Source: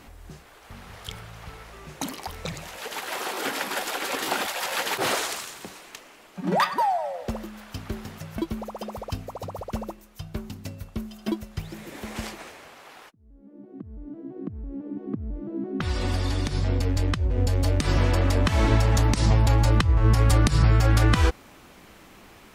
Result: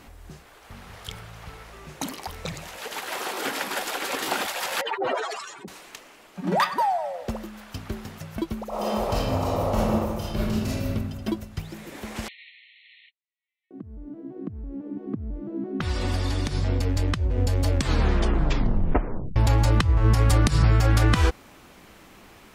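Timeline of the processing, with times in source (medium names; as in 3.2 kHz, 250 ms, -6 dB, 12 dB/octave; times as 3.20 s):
4.81–5.68 s: spectral contrast enhancement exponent 3.3
8.68–10.90 s: reverb throw, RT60 1.6 s, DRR -10 dB
12.28–13.71 s: brick-wall FIR band-pass 1.8–4.3 kHz
17.68 s: tape stop 1.68 s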